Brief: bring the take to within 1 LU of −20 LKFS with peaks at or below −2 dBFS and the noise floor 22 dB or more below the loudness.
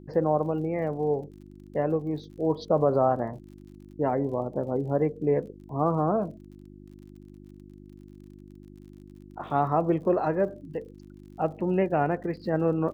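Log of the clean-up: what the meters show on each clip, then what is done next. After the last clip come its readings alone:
crackle rate 48 per second; mains hum 50 Hz; hum harmonics up to 350 Hz; level of the hum −46 dBFS; integrated loudness −27.5 LKFS; sample peak −10.5 dBFS; target loudness −20.0 LKFS
→ click removal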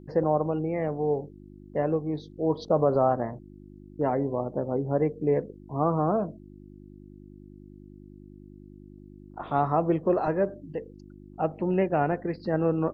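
crackle rate 0.15 per second; mains hum 50 Hz; hum harmonics up to 350 Hz; level of the hum −46 dBFS
→ hum removal 50 Hz, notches 7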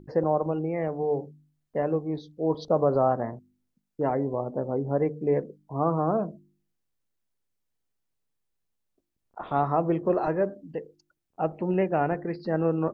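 mains hum none found; integrated loudness −27.5 LKFS; sample peak −10.5 dBFS; target loudness −20.0 LKFS
→ level +7.5 dB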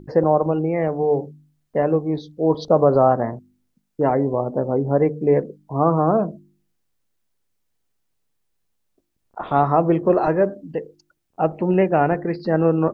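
integrated loudness −20.0 LKFS; sample peak −3.0 dBFS; background noise floor −72 dBFS

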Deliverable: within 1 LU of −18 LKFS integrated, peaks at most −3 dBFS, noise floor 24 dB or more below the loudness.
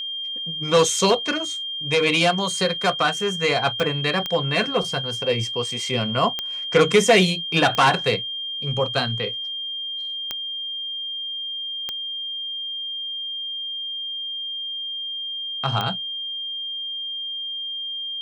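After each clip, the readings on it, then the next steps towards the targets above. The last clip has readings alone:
number of clicks 7; interfering tone 3,200 Hz; level of the tone −27 dBFS; integrated loudness −22.5 LKFS; sample peak −3.5 dBFS; target loudness −18.0 LKFS
→ click removal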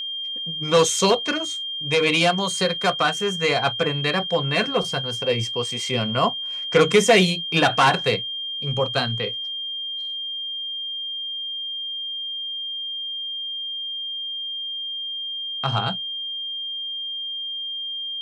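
number of clicks 0; interfering tone 3,200 Hz; level of the tone −27 dBFS
→ notch filter 3,200 Hz, Q 30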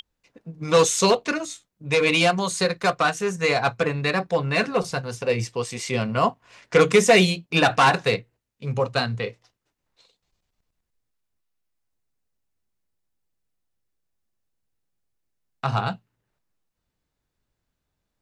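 interfering tone none found; integrated loudness −21.5 LKFS; sample peak −4.0 dBFS; target loudness −18.0 LKFS
→ level +3.5 dB
brickwall limiter −3 dBFS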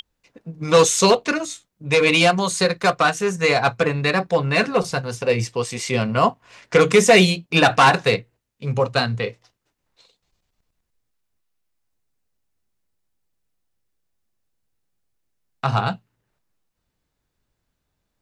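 integrated loudness −18.5 LKFS; sample peak −3.0 dBFS; background noise floor −77 dBFS

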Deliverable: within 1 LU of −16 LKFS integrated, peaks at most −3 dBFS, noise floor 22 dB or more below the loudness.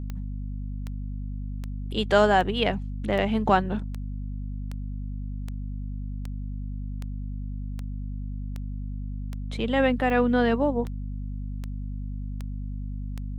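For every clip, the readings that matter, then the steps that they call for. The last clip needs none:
number of clicks 18; mains hum 50 Hz; hum harmonics up to 250 Hz; level of the hum −30 dBFS; integrated loudness −28.5 LKFS; sample peak −6.0 dBFS; target loudness −16.0 LKFS
→ click removal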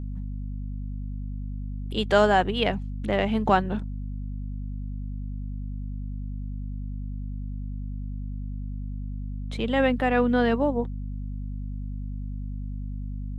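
number of clicks 0; mains hum 50 Hz; hum harmonics up to 250 Hz; level of the hum −30 dBFS
→ hum removal 50 Hz, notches 5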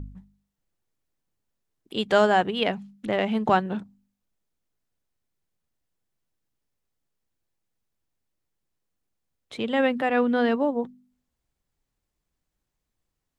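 mains hum none found; integrated loudness −24.5 LKFS; sample peak −7.0 dBFS; target loudness −16.0 LKFS
→ level +8.5 dB
brickwall limiter −3 dBFS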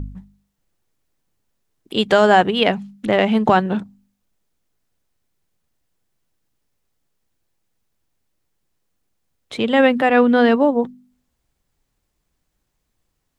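integrated loudness −16.5 LKFS; sample peak −3.0 dBFS; background noise floor −73 dBFS

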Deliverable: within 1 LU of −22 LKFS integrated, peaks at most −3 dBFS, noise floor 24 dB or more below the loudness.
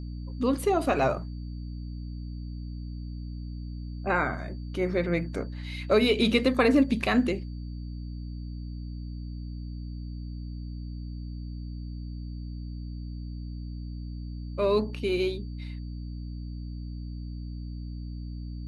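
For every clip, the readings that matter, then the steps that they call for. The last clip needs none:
mains hum 60 Hz; hum harmonics up to 300 Hz; level of the hum −34 dBFS; interfering tone 4,600 Hz; level of the tone −59 dBFS; integrated loudness −31.0 LKFS; sample peak −10.5 dBFS; target loudness −22.0 LKFS
→ hum removal 60 Hz, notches 5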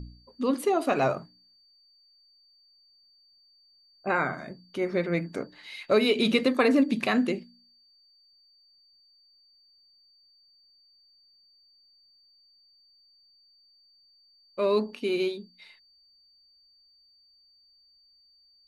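mains hum none found; interfering tone 4,600 Hz; level of the tone −59 dBFS
→ notch filter 4,600 Hz, Q 30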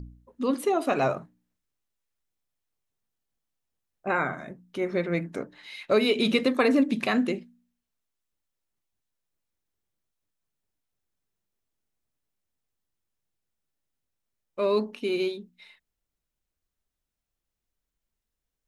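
interfering tone none found; integrated loudness −26.5 LKFS; sample peak −10.5 dBFS; target loudness −22.0 LKFS
→ level +4.5 dB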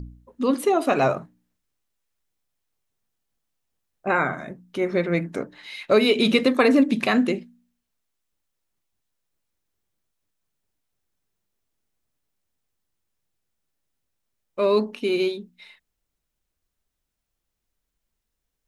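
integrated loudness −22.0 LKFS; sample peak −6.0 dBFS; background noise floor −81 dBFS

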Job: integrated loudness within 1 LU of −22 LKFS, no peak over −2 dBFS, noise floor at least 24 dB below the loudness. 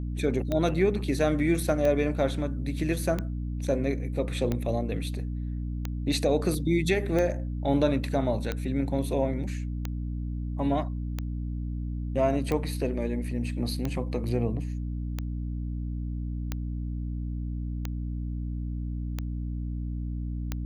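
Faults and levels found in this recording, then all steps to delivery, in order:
number of clicks 16; mains hum 60 Hz; hum harmonics up to 300 Hz; level of the hum −29 dBFS; integrated loudness −29.5 LKFS; sample peak −11.5 dBFS; target loudness −22.0 LKFS
→ click removal
mains-hum notches 60/120/180/240/300 Hz
level +7.5 dB

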